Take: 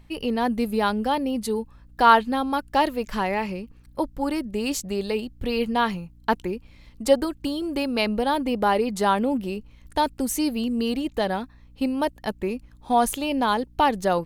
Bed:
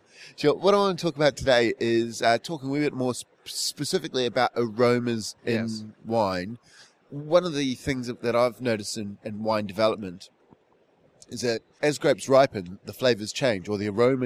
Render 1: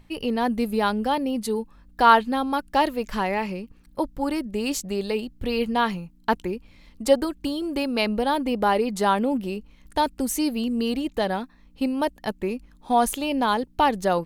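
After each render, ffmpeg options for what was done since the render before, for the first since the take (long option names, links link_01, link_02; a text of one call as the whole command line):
ffmpeg -i in.wav -af "bandreject=frequency=60:width_type=h:width=4,bandreject=frequency=120:width_type=h:width=4" out.wav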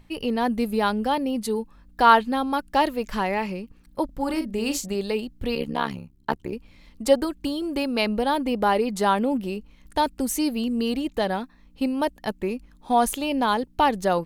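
ffmpeg -i in.wav -filter_complex "[0:a]asettb=1/sr,asplit=3[link_01][link_02][link_03];[link_01]atrim=end=4.054[link_04];[link_02]atrim=start=4.05:end=4.95,asetpts=PTS-STARTPTS,afade=type=in:duration=0.004:curve=qsin,afade=type=out:start_time=0.896:duration=0.004:curve=qsin,asplit=2[link_05][link_06];[link_06]adelay=41,volume=-8dB[link_07];[link_05][link_07]amix=inputs=2:normalize=0,atrim=end_sample=39690[link_08];[link_03]atrim=start=4.946[link_09];[link_04][link_08]acrossfade=duration=0.004:curve1=hsin:curve2=qsin[link_10];[link_10][link_09]acrossfade=duration=0.004:curve1=qsin:curve2=hsin,asettb=1/sr,asplit=3[link_11][link_12][link_13];[link_11]atrim=end=5.554[link_14];[link_12]atrim=start=5.55:end=6.53,asetpts=PTS-STARTPTS,afade=type=in:duration=0.004:curve=qsin,afade=type=out:start_time=0.976:duration=0.004:curve=qsin,tremolo=f=69:d=0.974[link_15];[link_13]atrim=start=6.526[link_16];[link_14][link_15]acrossfade=duration=0.004:curve1=hsin:curve2=qsin[link_17];[link_17][link_16]acrossfade=duration=0.004:curve1=qsin:curve2=hsin" out.wav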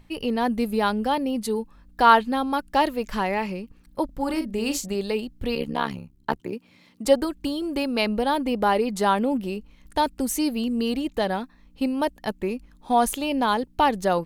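ffmpeg -i in.wav -filter_complex "[0:a]asettb=1/sr,asplit=3[link_01][link_02][link_03];[link_01]atrim=end=6.404[link_04];[link_02]atrim=start=6.4:end=7.05,asetpts=PTS-STARTPTS,afade=type=in:duration=0.004:curve=qsin,afade=type=out:start_time=0.646:duration=0.004:curve=qsin,highpass=frequency=120:width=0.5412,highpass=frequency=120:width=1.3066[link_05];[link_03]atrim=start=7.046[link_06];[link_04][link_05]acrossfade=duration=0.004:curve1=hsin:curve2=qsin[link_07];[link_07][link_06]acrossfade=duration=0.004:curve1=qsin:curve2=hsin" out.wav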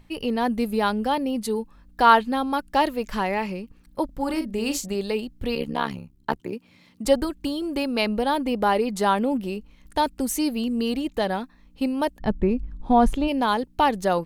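ffmpeg -i in.wav -filter_complex "[0:a]asettb=1/sr,asplit=3[link_01][link_02][link_03];[link_01]atrim=end=6.474[link_04];[link_02]atrim=start=6.47:end=7.3,asetpts=PTS-STARTPTS,afade=type=in:duration=0.004:curve=qsin,afade=type=out:start_time=0.826:duration=0.004:curve=qsin,asubboost=boost=6.5:cutoff=220[link_05];[link_03]atrim=start=7.296[link_06];[link_04][link_05]acrossfade=duration=0.004:curve1=hsin:curve2=qsin[link_07];[link_07][link_06]acrossfade=duration=0.004:curve1=qsin:curve2=hsin,asplit=3[link_08][link_09][link_10];[link_08]afade=type=out:start_time=12.19:duration=0.02[link_11];[link_09]aemphasis=mode=reproduction:type=riaa,afade=type=in:start_time=12.19:duration=0.02,afade=type=out:start_time=13.27:duration=0.02[link_12];[link_10]afade=type=in:start_time=13.27:duration=0.02[link_13];[link_11][link_12][link_13]amix=inputs=3:normalize=0" out.wav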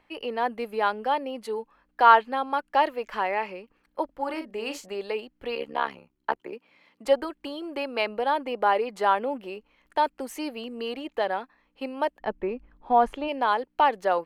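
ffmpeg -i in.wav -filter_complex "[0:a]acrossover=split=380 3300:gain=0.0794 1 0.178[link_01][link_02][link_03];[link_01][link_02][link_03]amix=inputs=3:normalize=0,bandreject=frequency=3700:width=15" out.wav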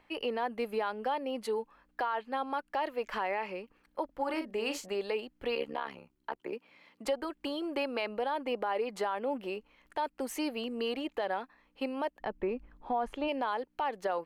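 ffmpeg -i in.wav -af "acompressor=threshold=-30dB:ratio=2,alimiter=limit=-23dB:level=0:latency=1:release=51" out.wav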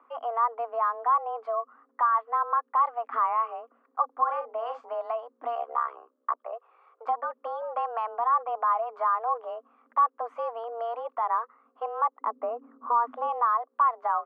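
ffmpeg -i in.wav -af "lowpass=frequency=940:width_type=q:width=4.2,afreqshift=230" out.wav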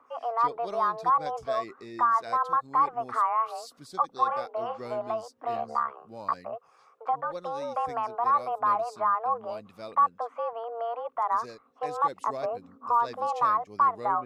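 ffmpeg -i in.wav -i bed.wav -filter_complex "[1:a]volume=-19dB[link_01];[0:a][link_01]amix=inputs=2:normalize=0" out.wav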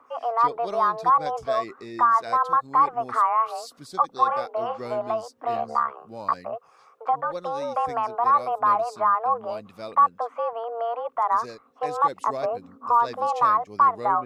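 ffmpeg -i in.wav -af "volume=4.5dB" out.wav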